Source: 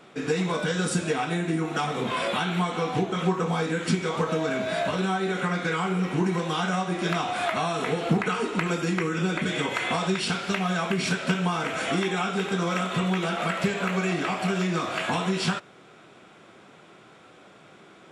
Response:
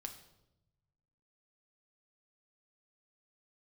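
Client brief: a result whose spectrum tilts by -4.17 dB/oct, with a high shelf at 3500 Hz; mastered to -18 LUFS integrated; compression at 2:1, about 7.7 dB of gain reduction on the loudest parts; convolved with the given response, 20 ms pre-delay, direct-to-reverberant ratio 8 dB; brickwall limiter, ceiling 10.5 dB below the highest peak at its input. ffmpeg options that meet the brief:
-filter_complex "[0:a]highshelf=f=3.5k:g=-3.5,acompressor=threshold=-33dB:ratio=2,alimiter=level_in=4.5dB:limit=-24dB:level=0:latency=1,volume=-4.5dB,asplit=2[a][b];[1:a]atrim=start_sample=2205,adelay=20[c];[b][c]afir=irnorm=-1:irlink=0,volume=-4.5dB[d];[a][d]amix=inputs=2:normalize=0,volume=18.5dB"

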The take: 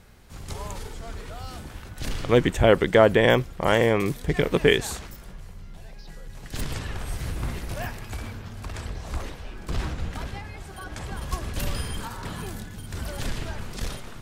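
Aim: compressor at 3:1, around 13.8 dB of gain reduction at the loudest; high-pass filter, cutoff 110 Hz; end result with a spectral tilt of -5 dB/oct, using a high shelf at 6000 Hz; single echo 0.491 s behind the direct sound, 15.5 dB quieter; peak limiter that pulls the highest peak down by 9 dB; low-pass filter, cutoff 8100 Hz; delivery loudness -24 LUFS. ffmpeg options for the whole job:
-af "highpass=110,lowpass=8.1k,highshelf=f=6k:g=-5,acompressor=threshold=-32dB:ratio=3,alimiter=level_in=0.5dB:limit=-24dB:level=0:latency=1,volume=-0.5dB,aecho=1:1:491:0.168,volume=14.5dB"

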